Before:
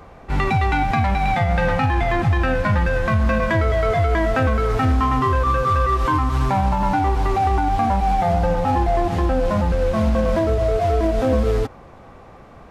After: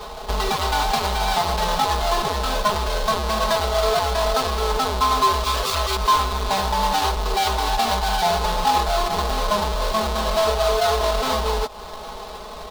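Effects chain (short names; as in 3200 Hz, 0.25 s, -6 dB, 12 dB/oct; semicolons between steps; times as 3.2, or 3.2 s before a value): half-waves squared off; comb 4.7 ms, depth 95%; compressor, threshold -20 dBFS, peak gain reduction 12 dB; ten-band EQ 125 Hz -7 dB, 250 Hz -7 dB, 500 Hz +5 dB, 1000 Hz +10 dB, 2000 Hz -5 dB, 4000 Hz +10 dB; gain -1.5 dB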